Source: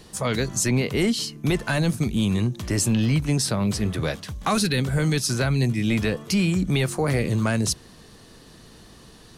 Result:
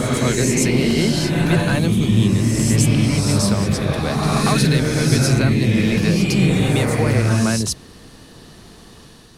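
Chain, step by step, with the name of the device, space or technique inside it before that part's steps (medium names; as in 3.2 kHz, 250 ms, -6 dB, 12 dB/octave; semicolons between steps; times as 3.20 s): reverse reverb (reverse; reverberation RT60 2.6 s, pre-delay 91 ms, DRR -2 dB; reverse); trim +1.5 dB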